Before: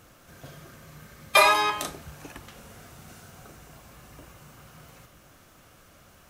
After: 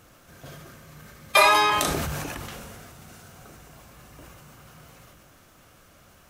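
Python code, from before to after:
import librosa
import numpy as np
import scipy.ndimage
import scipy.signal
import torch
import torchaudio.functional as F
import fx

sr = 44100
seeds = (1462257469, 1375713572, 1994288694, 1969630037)

y = fx.sustainer(x, sr, db_per_s=21.0)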